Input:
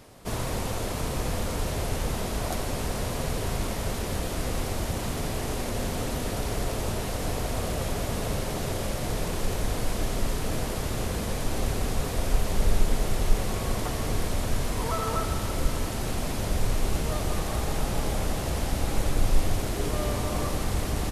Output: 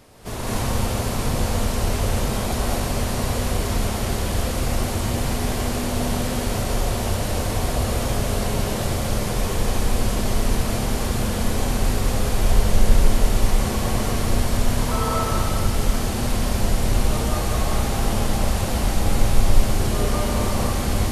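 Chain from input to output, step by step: non-linear reverb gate 0.26 s rising, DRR -4.5 dB

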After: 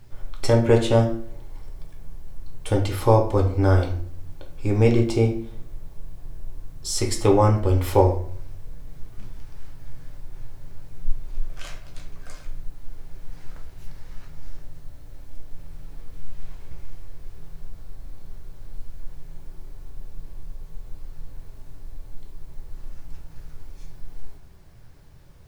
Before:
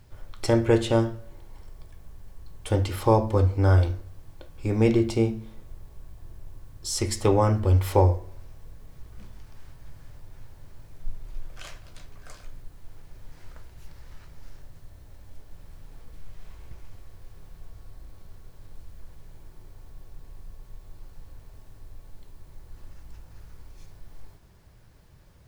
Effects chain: shoebox room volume 42 m³, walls mixed, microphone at 0.36 m; gain +1.5 dB

